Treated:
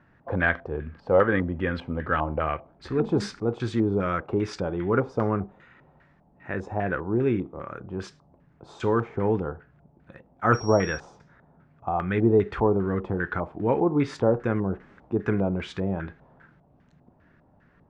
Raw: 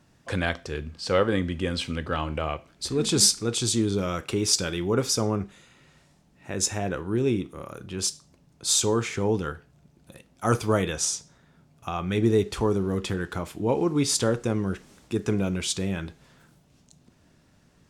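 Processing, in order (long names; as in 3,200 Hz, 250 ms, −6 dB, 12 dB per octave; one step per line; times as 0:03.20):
auto-filter low-pass square 2.5 Hz 810–1,700 Hz
0:10.53–0:10.97: steady tone 5,600 Hz −39 dBFS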